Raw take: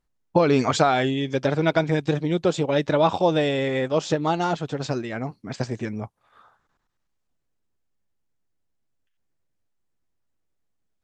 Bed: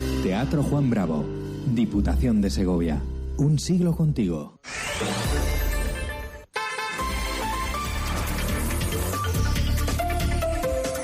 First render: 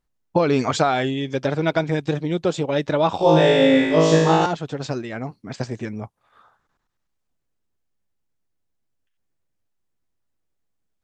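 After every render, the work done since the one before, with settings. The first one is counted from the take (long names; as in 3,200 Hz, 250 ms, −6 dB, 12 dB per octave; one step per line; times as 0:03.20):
0:03.17–0:04.46: flutter between parallel walls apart 3.2 metres, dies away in 1.2 s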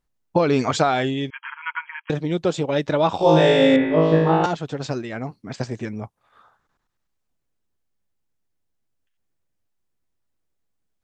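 0:01.30–0:02.10: linear-phase brick-wall band-pass 880–3,300 Hz
0:03.76–0:04.44: high-frequency loss of the air 440 metres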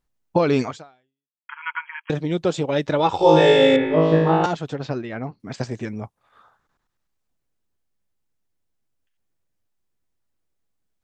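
0:00.62–0:01.49: fade out exponential
0:02.99–0:03.94: comb filter 2.3 ms, depth 57%
0:04.76–0:05.40: Gaussian smoothing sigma 1.8 samples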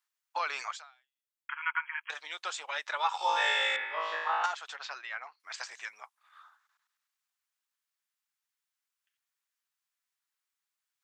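high-pass filter 1,100 Hz 24 dB per octave
dynamic equaliser 3,900 Hz, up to −7 dB, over −40 dBFS, Q 0.71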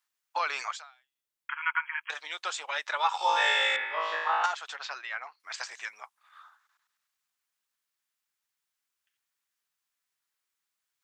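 level +3 dB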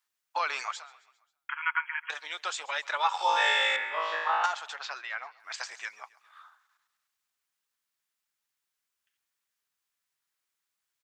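repeating echo 134 ms, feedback 54%, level −21.5 dB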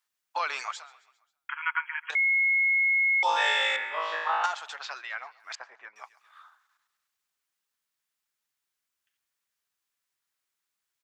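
0:02.15–0:03.23: beep over 2,170 Hz −20.5 dBFS
0:05.55–0:05.96: low-pass filter 1,200 Hz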